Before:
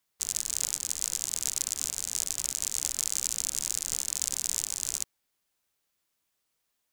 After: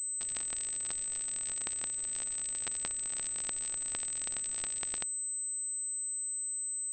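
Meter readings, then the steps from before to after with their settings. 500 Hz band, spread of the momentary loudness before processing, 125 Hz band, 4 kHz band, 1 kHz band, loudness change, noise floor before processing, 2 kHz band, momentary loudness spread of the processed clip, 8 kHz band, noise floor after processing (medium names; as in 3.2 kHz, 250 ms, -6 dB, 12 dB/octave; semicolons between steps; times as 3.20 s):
+0.5 dB, 2 LU, -4.0 dB, -11.0 dB, +0.5 dB, -4.0 dB, -79 dBFS, -1.0 dB, 0 LU, -2.5 dB, -37 dBFS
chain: FFT band-reject 680–1600 Hz; class-D stage that switches slowly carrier 8.1 kHz; trim -6.5 dB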